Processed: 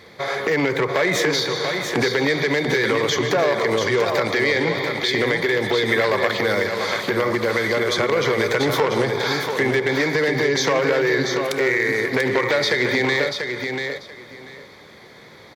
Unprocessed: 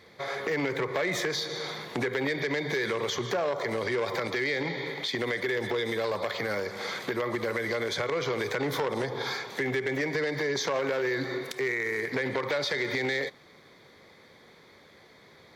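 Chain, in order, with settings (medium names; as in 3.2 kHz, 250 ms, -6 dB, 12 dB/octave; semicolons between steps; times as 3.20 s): 5.88–6.31 s: peaking EQ 1.8 kHz +7.5 dB 0.82 oct; feedback delay 689 ms, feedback 18%, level -6 dB; trim +9 dB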